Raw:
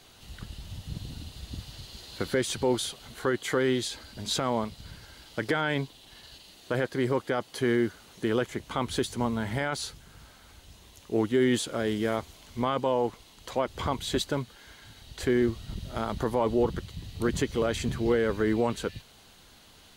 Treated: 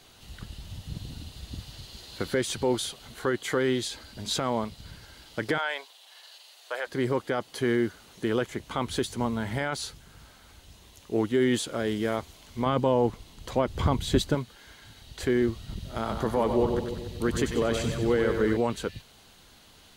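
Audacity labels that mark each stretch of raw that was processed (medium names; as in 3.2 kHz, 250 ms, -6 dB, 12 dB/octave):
5.580000	6.870000	high-pass 580 Hz 24 dB/octave
12.660000	14.350000	bass shelf 280 Hz +11 dB
15.940000	18.570000	two-band feedback delay split 690 Hz, lows 140 ms, highs 94 ms, level -6 dB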